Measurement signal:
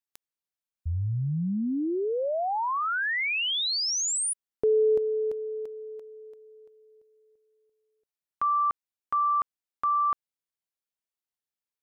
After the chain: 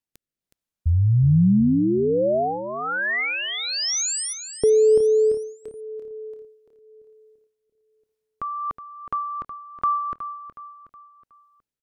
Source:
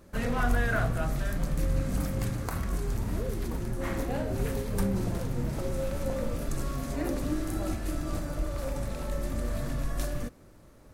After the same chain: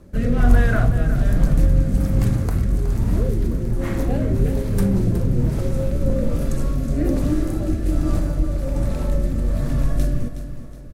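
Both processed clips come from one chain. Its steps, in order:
low-shelf EQ 460 Hz +9.5 dB
rotating-speaker cabinet horn 1.2 Hz
on a send: repeating echo 368 ms, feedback 42%, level −11 dB
on the sum: level +4 dB

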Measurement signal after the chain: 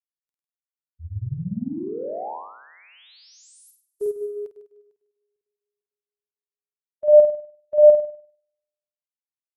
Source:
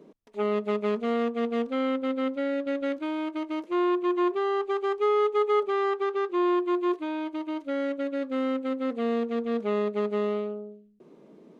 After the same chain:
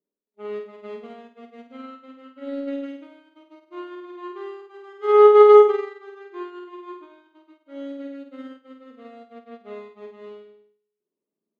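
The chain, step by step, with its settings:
harmonic and percussive parts rebalanced percussive −9 dB
flutter between parallel walls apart 8.6 metres, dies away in 1.2 s
expander for the loud parts 2.5 to 1, over −40 dBFS
level +5.5 dB

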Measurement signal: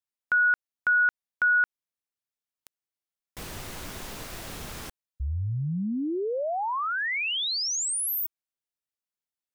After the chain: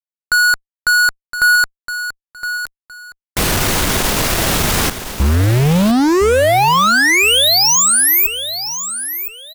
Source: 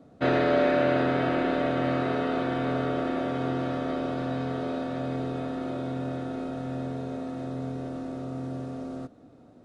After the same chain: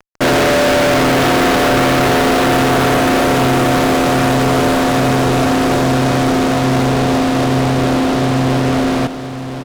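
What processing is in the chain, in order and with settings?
fuzz pedal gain 44 dB, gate −44 dBFS
repeating echo 1,015 ms, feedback 24%, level −10.5 dB
level +2 dB

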